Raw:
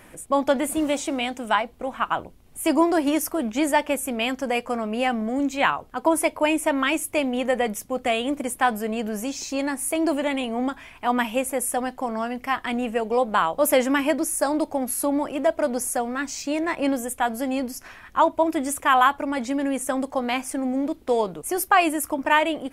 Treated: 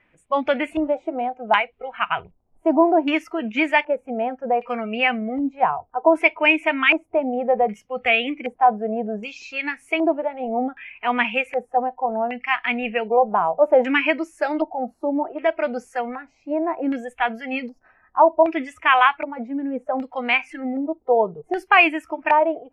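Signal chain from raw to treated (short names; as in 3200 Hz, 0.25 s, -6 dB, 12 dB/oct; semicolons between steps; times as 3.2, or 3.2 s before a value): dynamic EQ 2400 Hz, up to +5 dB, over -44 dBFS, Q 3.7; spectral noise reduction 17 dB; LFO low-pass square 0.65 Hz 780–2500 Hz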